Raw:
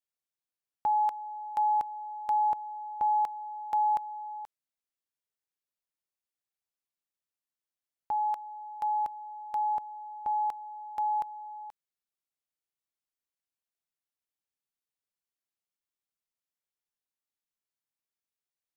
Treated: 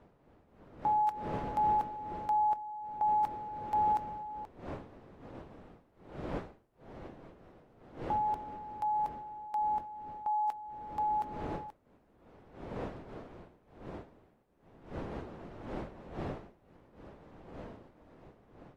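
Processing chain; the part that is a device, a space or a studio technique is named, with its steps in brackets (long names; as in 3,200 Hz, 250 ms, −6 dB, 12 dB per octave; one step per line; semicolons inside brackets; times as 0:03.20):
smartphone video outdoors (wind on the microphone 520 Hz −44 dBFS; automatic gain control gain up to 5.5 dB; level −8 dB; AAC 48 kbit/s 44,100 Hz)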